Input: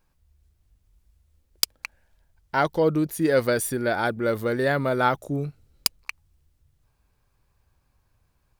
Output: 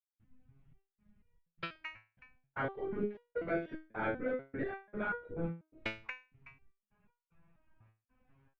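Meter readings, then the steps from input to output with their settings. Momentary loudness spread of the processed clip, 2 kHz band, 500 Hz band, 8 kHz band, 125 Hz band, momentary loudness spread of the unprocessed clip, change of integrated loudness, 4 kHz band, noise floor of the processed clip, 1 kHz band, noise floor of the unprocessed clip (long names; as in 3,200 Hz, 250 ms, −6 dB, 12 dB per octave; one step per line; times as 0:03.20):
11 LU, −11.5 dB, −14.5 dB, below −40 dB, −15.5 dB, 12 LU, −15.0 dB, −21.0 dB, below −85 dBFS, −16.0 dB, −69 dBFS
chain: Butterworth low-pass 2,700 Hz 36 dB per octave
downward compressor 4 to 1, threshold −33 dBFS, peak gain reduction 14.5 dB
single-tap delay 373 ms −18.5 dB
gate pattern ".xxx.xx.xx.x" 76 BPM −60 dB
dynamic equaliser 850 Hz, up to −5 dB, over −49 dBFS, Q 1.8
random phases in short frames
step-sequenced resonator 4.1 Hz 110–480 Hz
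level +12.5 dB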